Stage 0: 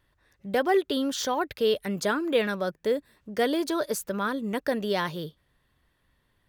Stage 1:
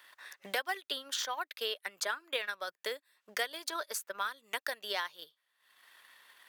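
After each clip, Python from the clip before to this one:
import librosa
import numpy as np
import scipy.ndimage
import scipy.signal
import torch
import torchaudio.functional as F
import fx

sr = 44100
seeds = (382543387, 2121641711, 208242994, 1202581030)

y = scipy.signal.sosfilt(scipy.signal.butter(2, 1100.0, 'highpass', fs=sr, output='sos'), x)
y = fx.transient(y, sr, attack_db=6, sustain_db=-9)
y = fx.band_squash(y, sr, depth_pct=70)
y = F.gain(torch.from_numpy(y), -5.0).numpy()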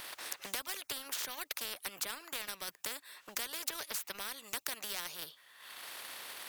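y = fx.spectral_comp(x, sr, ratio=4.0)
y = F.gain(torch.from_numpy(y), 3.0).numpy()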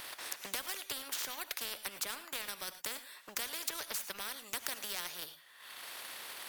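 y = fx.rev_gated(x, sr, seeds[0], gate_ms=130, shape='rising', drr_db=11.5)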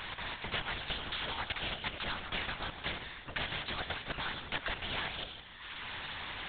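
y = fx.echo_feedback(x, sr, ms=160, feedback_pct=45, wet_db=-10.5)
y = fx.lpc_vocoder(y, sr, seeds[1], excitation='whisper', order=10)
y = F.gain(torch.from_numpy(y), 6.5).numpy()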